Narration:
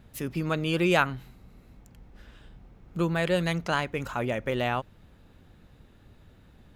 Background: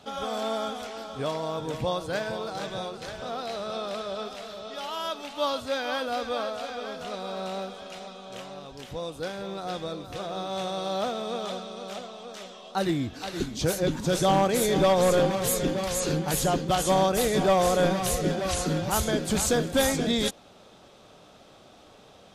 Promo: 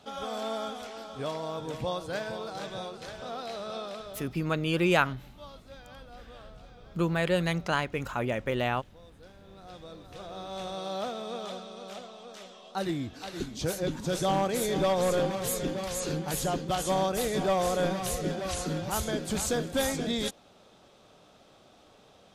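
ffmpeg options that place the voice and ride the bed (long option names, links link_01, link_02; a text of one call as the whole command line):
ffmpeg -i stem1.wav -i stem2.wav -filter_complex "[0:a]adelay=4000,volume=-1dB[link_01];[1:a]volume=11.5dB,afade=type=out:start_time=3.78:duration=0.57:silence=0.149624,afade=type=in:start_time=9.41:duration=1.4:silence=0.16788[link_02];[link_01][link_02]amix=inputs=2:normalize=0" out.wav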